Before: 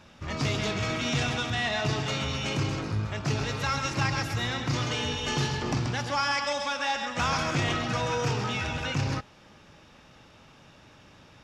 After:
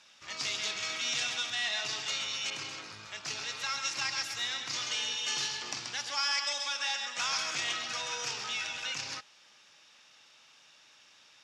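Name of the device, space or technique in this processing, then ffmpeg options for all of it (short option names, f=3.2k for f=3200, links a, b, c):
piezo pickup straight into a mixer: -filter_complex "[0:a]lowpass=6.5k,aderivative,asettb=1/sr,asplit=3[a][b][c];[a]atrim=end=2.504[d];[b]atrim=start=2.5:end=3.85,asetpts=PTS-STARTPTS,afade=t=in:d=0.004:c=qsin,afade=t=out:st=1.346:d=0.004:c=qsin,adynamicequalizer=threshold=0.00224:dfrequency=3600:dqfactor=0.7:tfrequency=3600:tqfactor=0.7:attack=5:release=100:ratio=0.375:range=2:mode=cutabove:tftype=highshelf[e];[c]atrim=start=3.846[f];[d][e]acrossfade=d=0.004:c1=hsin:c2=qsin[g];[g][f]acrossfade=d=0.004:c1=qsin:c2=hsin,volume=7dB"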